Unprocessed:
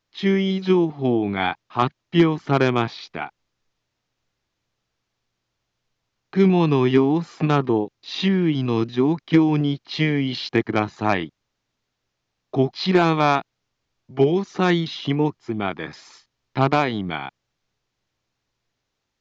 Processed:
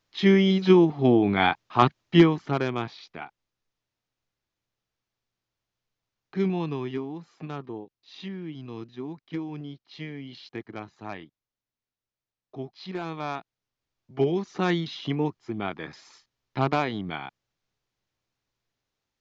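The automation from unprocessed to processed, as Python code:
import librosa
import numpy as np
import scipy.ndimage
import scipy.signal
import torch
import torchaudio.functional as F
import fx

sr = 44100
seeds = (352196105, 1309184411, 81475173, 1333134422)

y = fx.gain(x, sr, db=fx.line((2.15, 1.0), (2.62, -9.0), (6.41, -9.0), (7.11, -17.0), (12.96, -17.0), (14.29, -6.0)))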